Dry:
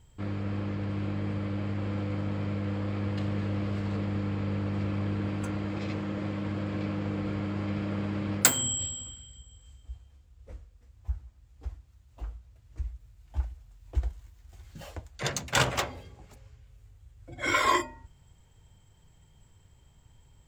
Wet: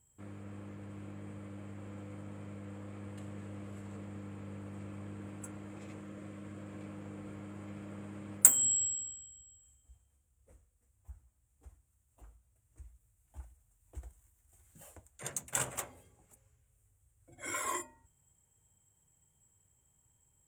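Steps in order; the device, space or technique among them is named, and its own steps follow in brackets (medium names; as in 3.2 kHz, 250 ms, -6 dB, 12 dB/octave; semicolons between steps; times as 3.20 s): 6.00–6.62 s: band-stop 860 Hz, Q 5.2; budget condenser microphone (high-pass 95 Hz 6 dB/octave; resonant high shelf 6.5 kHz +12 dB, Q 3); trim -13 dB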